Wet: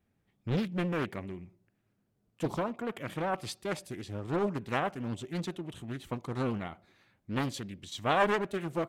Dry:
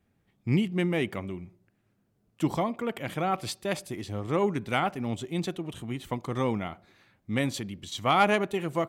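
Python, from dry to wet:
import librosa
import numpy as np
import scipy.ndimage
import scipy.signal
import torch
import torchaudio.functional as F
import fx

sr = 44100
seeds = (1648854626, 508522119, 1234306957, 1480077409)

y = fx.vibrato(x, sr, rate_hz=12.0, depth_cents=37.0)
y = fx.doppler_dist(y, sr, depth_ms=0.97)
y = y * 10.0 ** (-4.5 / 20.0)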